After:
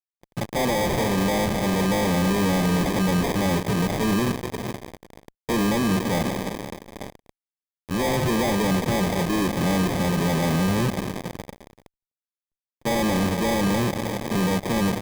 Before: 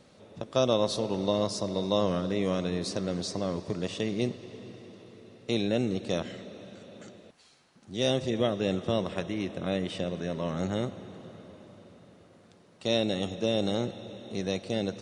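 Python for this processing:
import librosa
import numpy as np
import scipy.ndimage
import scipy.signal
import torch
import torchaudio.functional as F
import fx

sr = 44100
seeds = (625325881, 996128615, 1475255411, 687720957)

y = fx.fuzz(x, sr, gain_db=43.0, gate_db=-44.0)
y = fx.dynamic_eq(y, sr, hz=170.0, q=0.87, threshold_db=-27.0, ratio=4.0, max_db=4)
y = fx.sample_hold(y, sr, seeds[0], rate_hz=1400.0, jitter_pct=0)
y = F.gain(torch.from_numpy(y), -8.5).numpy()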